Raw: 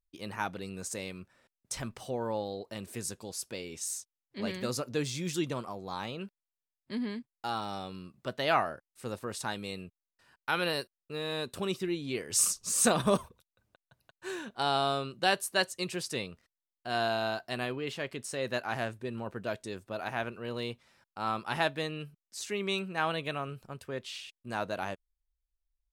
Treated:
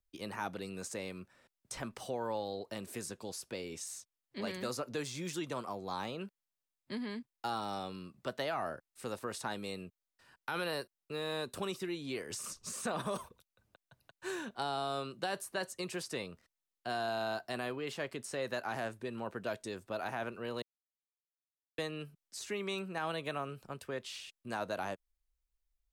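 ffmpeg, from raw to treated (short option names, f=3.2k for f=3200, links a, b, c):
-filter_complex "[0:a]asplit=3[a][b][c];[a]atrim=end=20.62,asetpts=PTS-STARTPTS,afade=t=out:st=20.616:d=0.004:c=hsin[d];[b]atrim=start=20.62:end=21.78,asetpts=PTS-STARTPTS,volume=0[e];[c]atrim=start=21.78,asetpts=PTS-STARTPTS,afade=t=in:d=0.004:c=hsin[f];[d][e][f]concat=n=3:v=0:a=1,acontrast=37,alimiter=limit=-17dB:level=0:latency=1:release=11,acrossover=split=180|600|2000|4100[g][h][i][j][k];[g]acompressor=threshold=-49dB:ratio=4[l];[h]acompressor=threshold=-35dB:ratio=4[m];[i]acompressor=threshold=-31dB:ratio=4[n];[j]acompressor=threshold=-49dB:ratio=4[o];[k]acompressor=threshold=-40dB:ratio=4[p];[l][m][n][o][p]amix=inputs=5:normalize=0,volume=-5dB"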